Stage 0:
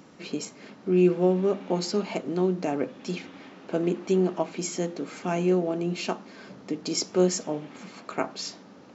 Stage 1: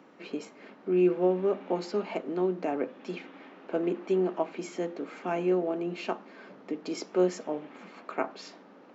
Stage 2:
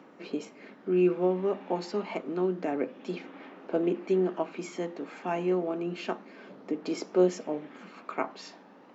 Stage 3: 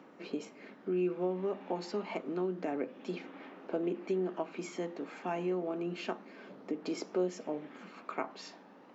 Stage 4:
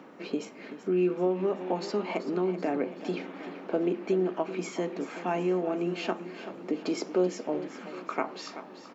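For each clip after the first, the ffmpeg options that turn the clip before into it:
-filter_complex "[0:a]acrossover=split=220 3100:gain=0.112 1 0.178[a][b][c];[a][b][c]amix=inputs=3:normalize=0,volume=-1.5dB"
-af "aphaser=in_gain=1:out_gain=1:delay=1.2:decay=0.26:speed=0.29:type=triangular"
-af "acompressor=threshold=-30dB:ratio=2,volume=-2.5dB"
-af "aecho=1:1:382|764|1146|1528|1910|2292:0.224|0.121|0.0653|0.0353|0.019|0.0103,volume=6dB"

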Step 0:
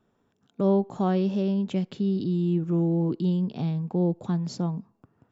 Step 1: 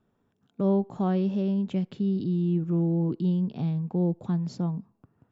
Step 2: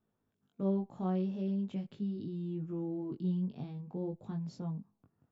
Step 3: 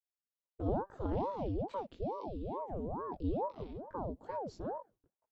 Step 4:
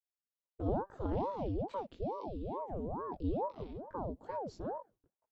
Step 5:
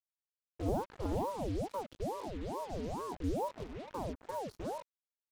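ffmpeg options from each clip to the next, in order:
-af "bass=f=250:g=4,treble=f=4k:g=-5,volume=-3.5dB"
-af "flanger=delay=19:depth=2.7:speed=0.44,volume=-7dB"
-af "agate=range=-33dB:threshold=-58dB:ratio=3:detection=peak,aeval=exprs='val(0)*sin(2*PI*440*n/s+440*0.8/2.3*sin(2*PI*2.3*n/s))':c=same,volume=1dB"
-af anull
-af "acrusher=bits=7:mix=0:aa=0.5"

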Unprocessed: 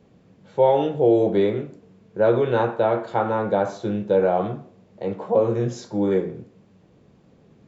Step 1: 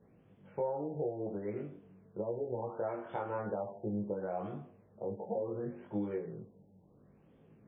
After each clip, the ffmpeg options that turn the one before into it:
-af "acompressor=threshold=-25dB:ratio=6,flanger=delay=18.5:depth=2.2:speed=0.8,afftfilt=real='re*lt(b*sr/1024,900*pow(3600/900,0.5+0.5*sin(2*PI*0.71*pts/sr)))':imag='im*lt(b*sr/1024,900*pow(3600/900,0.5+0.5*sin(2*PI*0.71*pts/sr)))':win_size=1024:overlap=0.75,volume=-5.5dB"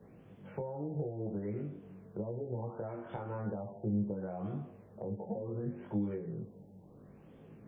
-filter_complex "[0:a]acrossover=split=230[a][b];[b]acompressor=threshold=-52dB:ratio=3[c];[a][c]amix=inputs=2:normalize=0,volume=7dB"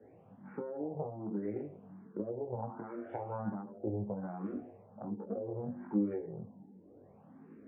-filter_complex "[0:a]aeval=exprs='0.0708*(cos(1*acos(clip(val(0)/0.0708,-1,1)))-cos(1*PI/2))+0.0282*(cos(2*acos(clip(val(0)/0.0708,-1,1)))-cos(2*PI/2))':c=same,highpass=110,equalizer=f=140:t=q:w=4:g=-8,equalizer=f=260:t=q:w=4:g=6,equalizer=f=790:t=q:w=4:g=4,lowpass=f=2.1k:w=0.5412,lowpass=f=2.1k:w=1.3066,asplit=2[a][b];[b]afreqshift=1.3[c];[a][c]amix=inputs=2:normalize=1,volume=2dB"

